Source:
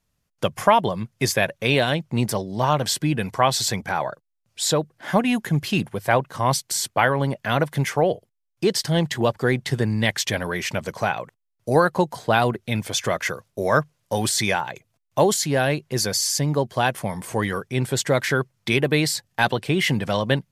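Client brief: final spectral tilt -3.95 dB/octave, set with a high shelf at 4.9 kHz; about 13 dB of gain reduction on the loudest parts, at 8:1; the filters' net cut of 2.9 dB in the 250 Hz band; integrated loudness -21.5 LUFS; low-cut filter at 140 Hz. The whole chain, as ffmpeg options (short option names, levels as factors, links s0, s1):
-af "highpass=140,equalizer=f=250:t=o:g=-3,highshelf=f=4900:g=-8.5,acompressor=threshold=0.0501:ratio=8,volume=3.16"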